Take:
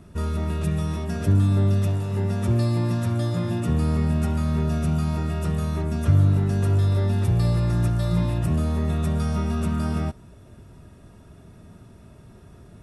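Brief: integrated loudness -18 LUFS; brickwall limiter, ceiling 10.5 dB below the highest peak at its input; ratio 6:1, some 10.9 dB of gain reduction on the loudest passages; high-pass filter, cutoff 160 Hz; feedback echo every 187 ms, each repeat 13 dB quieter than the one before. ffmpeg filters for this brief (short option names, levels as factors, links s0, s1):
-af "highpass=160,acompressor=threshold=0.0251:ratio=6,alimiter=level_in=2.99:limit=0.0631:level=0:latency=1,volume=0.335,aecho=1:1:187|374|561:0.224|0.0493|0.0108,volume=15.8"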